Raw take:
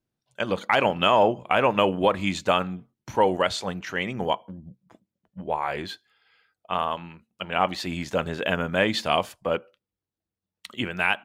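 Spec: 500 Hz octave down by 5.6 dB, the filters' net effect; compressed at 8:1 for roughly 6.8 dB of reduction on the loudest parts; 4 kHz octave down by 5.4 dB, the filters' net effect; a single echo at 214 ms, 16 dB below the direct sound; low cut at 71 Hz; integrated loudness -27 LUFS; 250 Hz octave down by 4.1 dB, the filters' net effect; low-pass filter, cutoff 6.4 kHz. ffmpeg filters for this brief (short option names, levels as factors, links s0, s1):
-af "highpass=71,lowpass=6400,equalizer=f=250:t=o:g=-4,equalizer=f=500:t=o:g=-6,equalizer=f=4000:t=o:g=-7.5,acompressor=threshold=0.0562:ratio=8,aecho=1:1:214:0.158,volume=1.88"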